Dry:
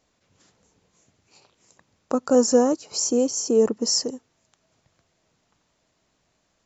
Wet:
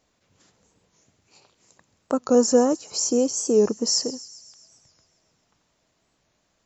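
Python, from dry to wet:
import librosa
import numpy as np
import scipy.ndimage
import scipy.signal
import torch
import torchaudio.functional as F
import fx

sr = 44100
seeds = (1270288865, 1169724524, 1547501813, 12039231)

p1 = x + fx.echo_wet_highpass(x, sr, ms=133, feedback_pct=63, hz=4000.0, wet_db=-14.0, dry=0)
y = fx.record_warp(p1, sr, rpm=45.0, depth_cents=100.0)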